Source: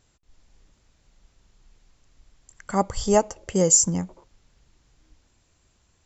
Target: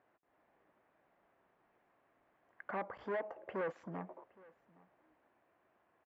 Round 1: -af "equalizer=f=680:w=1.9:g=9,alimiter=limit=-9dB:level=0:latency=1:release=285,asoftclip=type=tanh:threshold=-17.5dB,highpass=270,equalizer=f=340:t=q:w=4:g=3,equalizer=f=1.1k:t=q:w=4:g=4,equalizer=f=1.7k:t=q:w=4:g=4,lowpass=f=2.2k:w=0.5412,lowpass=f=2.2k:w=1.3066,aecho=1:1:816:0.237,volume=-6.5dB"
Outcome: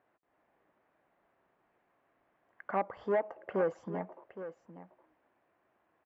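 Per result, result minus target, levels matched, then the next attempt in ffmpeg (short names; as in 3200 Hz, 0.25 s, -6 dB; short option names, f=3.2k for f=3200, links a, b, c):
echo-to-direct +11 dB; soft clip: distortion -8 dB
-af "equalizer=f=680:w=1.9:g=9,alimiter=limit=-9dB:level=0:latency=1:release=285,asoftclip=type=tanh:threshold=-17.5dB,highpass=270,equalizer=f=340:t=q:w=4:g=3,equalizer=f=1.1k:t=q:w=4:g=4,equalizer=f=1.7k:t=q:w=4:g=4,lowpass=f=2.2k:w=0.5412,lowpass=f=2.2k:w=1.3066,aecho=1:1:816:0.0668,volume=-6.5dB"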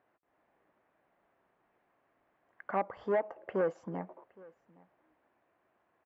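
soft clip: distortion -8 dB
-af "equalizer=f=680:w=1.9:g=9,alimiter=limit=-9dB:level=0:latency=1:release=285,asoftclip=type=tanh:threshold=-28.5dB,highpass=270,equalizer=f=340:t=q:w=4:g=3,equalizer=f=1.1k:t=q:w=4:g=4,equalizer=f=1.7k:t=q:w=4:g=4,lowpass=f=2.2k:w=0.5412,lowpass=f=2.2k:w=1.3066,aecho=1:1:816:0.0668,volume=-6.5dB"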